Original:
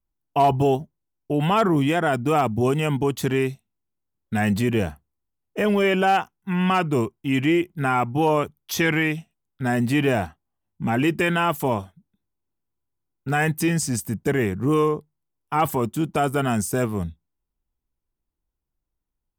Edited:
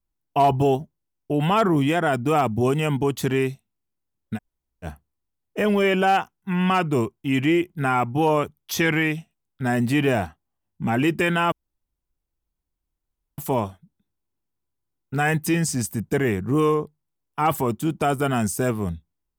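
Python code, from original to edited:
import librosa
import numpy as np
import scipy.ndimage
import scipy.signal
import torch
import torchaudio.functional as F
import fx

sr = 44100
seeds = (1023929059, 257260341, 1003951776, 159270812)

y = fx.edit(x, sr, fx.room_tone_fill(start_s=4.36, length_s=0.49, crossfade_s=0.06),
    fx.insert_room_tone(at_s=11.52, length_s=1.86), tone=tone)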